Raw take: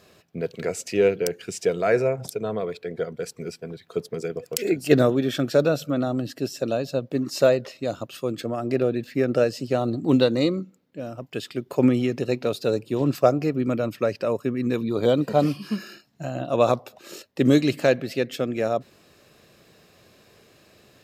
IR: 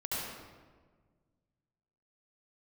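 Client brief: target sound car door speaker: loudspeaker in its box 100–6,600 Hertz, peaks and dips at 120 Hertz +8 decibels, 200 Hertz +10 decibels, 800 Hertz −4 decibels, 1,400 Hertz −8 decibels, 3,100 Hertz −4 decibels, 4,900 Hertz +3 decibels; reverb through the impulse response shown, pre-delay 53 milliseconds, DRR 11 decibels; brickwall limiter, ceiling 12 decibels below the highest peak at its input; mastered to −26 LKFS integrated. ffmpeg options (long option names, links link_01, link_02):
-filter_complex "[0:a]alimiter=limit=-16dB:level=0:latency=1,asplit=2[link_01][link_02];[1:a]atrim=start_sample=2205,adelay=53[link_03];[link_02][link_03]afir=irnorm=-1:irlink=0,volume=-16dB[link_04];[link_01][link_04]amix=inputs=2:normalize=0,highpass=100,equalizer=frequency=120:width_type=q:width=4:gain=8,equalizer=frequency=200:width_type=q:width=4:gain=10,equalizer=frequency=800:width_type=q:width=4:gain=-4,equalizer=frequency=1400:width_type=q:width=4:gain=-8,equalizer=frequency=3100:width_type=q:width=4:gain=-4,equalizer=frequency=4900:width_type=q:width=4:gain=3,lowpass=frequency=6600:width=0.5412,lowpass=frequency=6600:width=1.3066"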